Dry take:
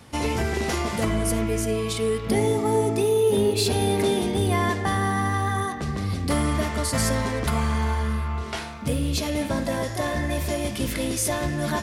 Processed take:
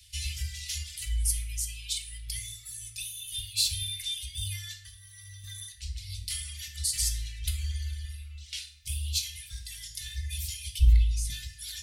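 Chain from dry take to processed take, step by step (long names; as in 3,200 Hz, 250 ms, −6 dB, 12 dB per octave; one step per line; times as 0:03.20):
inverse Chebyshev band-stop filter 240–870 Hz, stop band 70 dB
0:10.79–0:11.30: RIAA equalisation playback
reverb reduction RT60 1.8 s
0:04.79–0:05.44: downward compressor 10 to 1, threshold −47 dBFS, peak gain reduction 14 dB
0:06.24–0:06.68: low shelf with overshoot 540 Hz −9.5 dB, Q 3
convolution reverb RT60 0.55 s, pre-delay 3 ms, DRR 3.5 dB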